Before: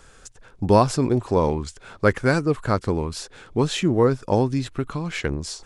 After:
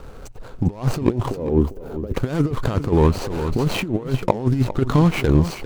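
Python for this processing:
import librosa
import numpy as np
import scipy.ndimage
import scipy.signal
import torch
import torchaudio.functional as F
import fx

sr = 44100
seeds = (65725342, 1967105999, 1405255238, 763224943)

y = scipy.signal.medfilt(x, 25)
y = fx.graphic_eq(y, sr, hz=(125, 250, 500, 1000, 2000, 4000, 8000), db=(-6, 3, 4, -10, -9, -11, -11), at=(1.3, 2.14))
y = fx.over_compress(y, sr, threshold_db=-26.0, ratio=-0.5)
y = y + 10.0 ** (-12.0 / 20.0) * np.pad(y, (int(400 * sr / 1000.0), 0))[:len(y)]
y = fx.pre_swell(y, sr, db_per_s=22.0, at=(2.92, 3.86))
y = y * librosa.db_to_amplitude(8.0)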